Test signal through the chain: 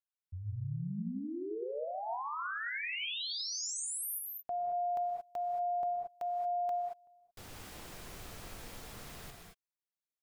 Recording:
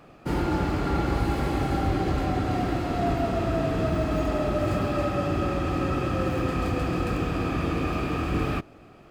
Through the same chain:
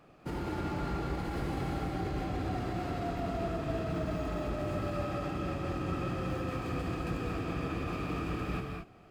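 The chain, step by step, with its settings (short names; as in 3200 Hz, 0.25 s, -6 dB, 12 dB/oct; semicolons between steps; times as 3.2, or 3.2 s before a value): limiter -19.5 dBFS; non-linear reverb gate 0.25 s rising, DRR 2 dB; gain -8.5 dB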